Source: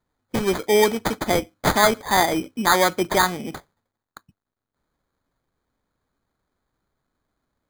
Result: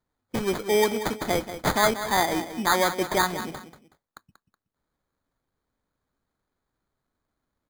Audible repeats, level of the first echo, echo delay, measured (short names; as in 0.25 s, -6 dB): 2, -11.5 dB, 0.186 s